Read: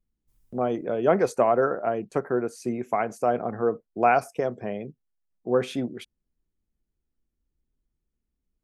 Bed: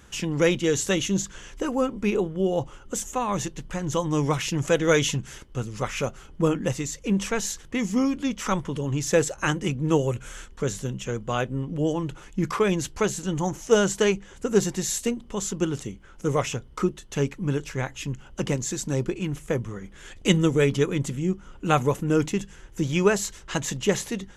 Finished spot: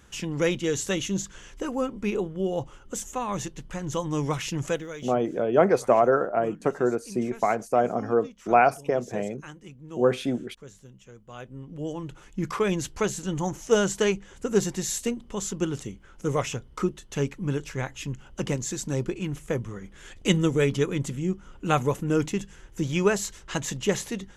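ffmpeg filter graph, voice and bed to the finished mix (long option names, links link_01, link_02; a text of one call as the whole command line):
ffmpeg -i stem1.wav -i stem2.wav -filter_complex "[0:a]adelay=4500,volume=1.5dB[link_01];[1:a]volume=13.5dB,afade=type=out:start_time=4.66:duration=0.23:silence=0.16788,afade=type=in:start_time=11.25:duration=1.5:silence=0.141254[link_02];[link_01][link_02]amix=inputs=2:normalize=0" out.wav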